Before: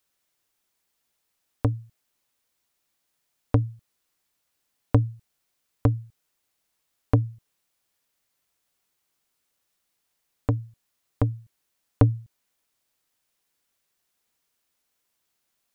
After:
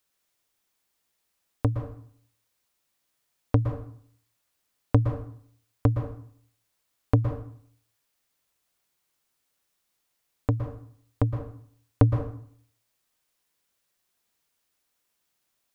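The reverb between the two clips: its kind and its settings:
dense smooth reverb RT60 0.58 s, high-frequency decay 0.75×, pre-delay 105 ms, DRR 5.5 dB
level −1 dB

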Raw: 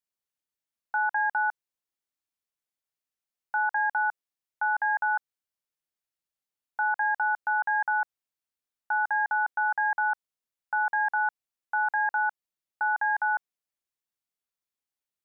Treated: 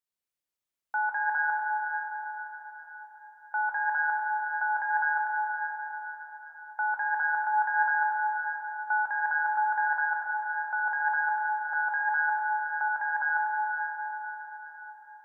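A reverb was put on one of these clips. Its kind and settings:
dense smooth reverb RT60 4.9 s, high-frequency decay 0.8×, DRR −2.5 dB
level −3 dB

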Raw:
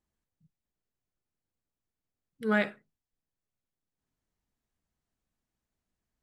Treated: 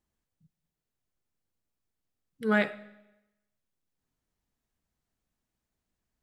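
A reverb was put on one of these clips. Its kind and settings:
comb and all-pass reverb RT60 0.94 s, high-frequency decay 0.95×, pre-delay 50 ms, DRR 19.5 dB
level +1.5 dB

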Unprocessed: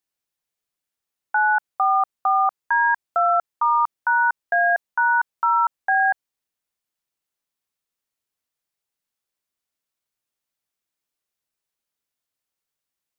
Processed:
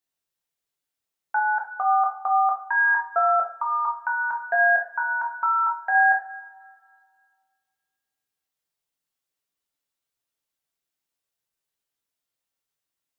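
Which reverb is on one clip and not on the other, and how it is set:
coupled-rooms reverb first 0.37 s, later 2.1 s, from −22 dB, DRR −0.5 dB
level −4 dB

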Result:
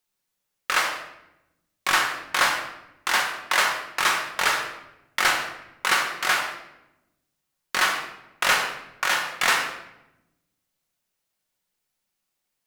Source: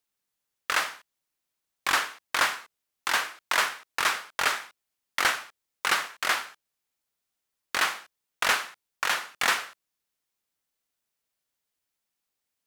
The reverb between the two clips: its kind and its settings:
rectangular room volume 340 cubic metres, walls mixed, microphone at 1 metre
level +2 dB

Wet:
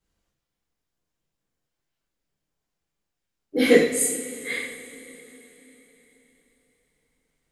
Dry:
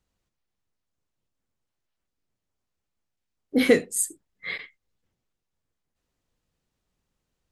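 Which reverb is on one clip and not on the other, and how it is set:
coupled-rooms reverb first 0.6 s, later 4.1 s, from −18 dB, DRR −10 dB
level −7 dB

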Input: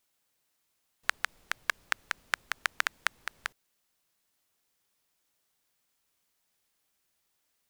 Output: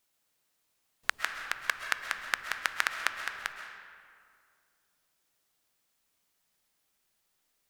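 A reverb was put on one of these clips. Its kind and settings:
comb and all-pass reverb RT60 2.2 s, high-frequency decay 0.6×, pre-delay 90 ms, DRR 5.5 dB

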